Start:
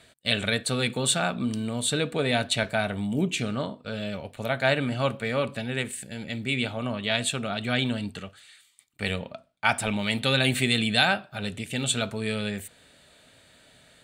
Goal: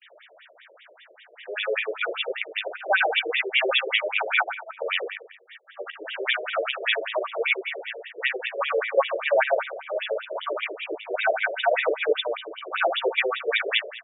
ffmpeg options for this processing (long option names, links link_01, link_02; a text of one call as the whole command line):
ffmpeg -i in.wav -filter_complex "[0:a]areverse,equalizer=frequency=170:width_type=o:width=1.8:gain=-2.5,bandreject=frequency=50:width_type=h:width=6,bandreject=frequency=100:width_type=h:width=6,bandreject=frequency=150:width_type=h:width=6,bandreject=frequency=200:width_type=h:width=6,bandreject=frequency=250:width_type=h:width=6,bandreject=frequency=300:width_type=h:width=6,bandreject=frequency=350:width_type=h:width=6,bandreject=frequency=400:width_type=h:width=6,asplit=2[link_01][link_02];[link_02]alimiter=limit=-15.5dB:level=0:latency=1:release=299,volume=-1dB[link_03];[link_01][link_03]amix=inputs=2:normalize=0,volume=14.5dB,asoftclip=hard,volume=-14.5dB,asplit=2[link_04][link_05];[link_05]adelay=13,volume=-13dB[link_06];[link_04][link_06]amix=inputs=2:normalize=0,asplit=2[link_07][link_08];[link_08]aecho=0:1:72|144|216|288|360|432|504:0.398|0.223|0.125|0.0699|0.0392|0.0219|0.0123[link_09];[link_07][link_09]amix=inputs=2:normalize=0,aresample=8000,aresample=44100,afftfilt=real='re*between(b*sr/1024,440*pow(2700/440,0.5+0.5*sin(2*PI*5.1*pts/sr))/1.41,440*pow(2700/440,0.5+0.5*sin(2*PI*5.1*pts/sr))*1.41)':imag='im*between(b*sr/1024,440*pow(2700/440,0.5+0.5*sin(2*PI*5.1*pts/sr))/1.41,440*pow(2700/440,0.5+0.5*sin(2*PI*5.1*pts/sr))*1.41)':win_size=1024:overlap=0.75,volume=5.5dB" out.wav